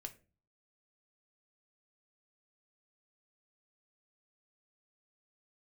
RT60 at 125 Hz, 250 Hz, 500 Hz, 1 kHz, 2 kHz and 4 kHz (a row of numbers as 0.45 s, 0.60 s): 0.65 s, 0.55 s, 0.40 s, 0.30 s, 0.30 s, 0.25 s